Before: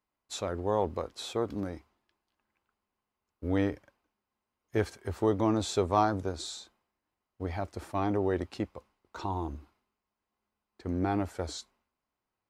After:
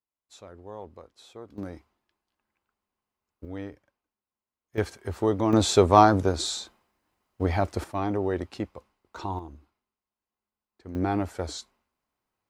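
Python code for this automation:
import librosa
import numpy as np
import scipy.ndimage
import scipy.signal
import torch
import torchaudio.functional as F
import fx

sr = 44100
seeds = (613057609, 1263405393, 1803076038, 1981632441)

y = fx.gain(x, sr, db=fx.steps((0.0, -12.5), (1.58, -1.0), (3.45, -9.0), (4.78, 2.5), (5.53, 9.5), (7.84, 1.5), (9.39, -6.5), (10.95, 3.0)))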